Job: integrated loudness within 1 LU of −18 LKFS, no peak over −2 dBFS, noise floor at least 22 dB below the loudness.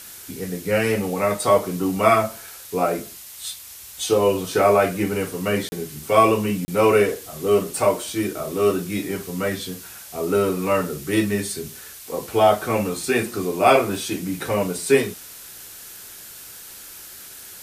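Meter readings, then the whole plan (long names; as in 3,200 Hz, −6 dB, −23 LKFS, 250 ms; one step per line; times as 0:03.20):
number of dropouts 2; longest dropout 30 ms; background noise floor −41 dBFS; target noise floor −44 dBFS; integrated loudness −21.5 LKFS; sample peak −2.0 dBFS; target loudness −18.0 LKFS
→ repair the gap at 0:05.69/0:06.65, 30 ms
noise reduction from a noise print 6 dB
level +3.5 dB
brickwall limiter −2 dBFS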